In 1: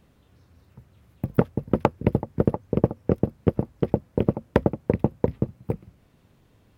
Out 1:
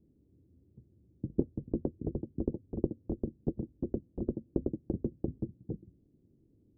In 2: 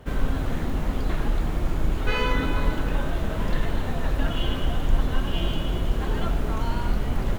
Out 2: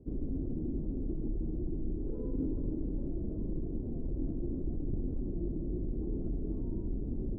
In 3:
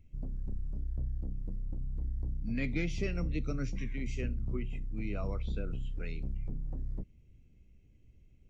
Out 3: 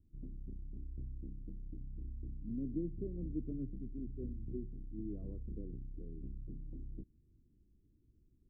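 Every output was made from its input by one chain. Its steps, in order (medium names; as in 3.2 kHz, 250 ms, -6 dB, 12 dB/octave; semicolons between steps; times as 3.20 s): Chebyshev shaper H 3 -11 dB, 7 -15 dB, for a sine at -1 dBFS; four-pole ladder low-pass 380 Hz, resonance 55%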